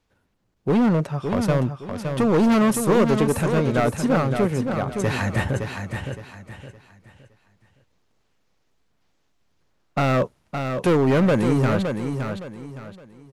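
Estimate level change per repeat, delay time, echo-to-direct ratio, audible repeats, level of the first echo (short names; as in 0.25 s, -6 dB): -10.0 dB, 0.565 s, -6.0 dB, 3, -6.5 dB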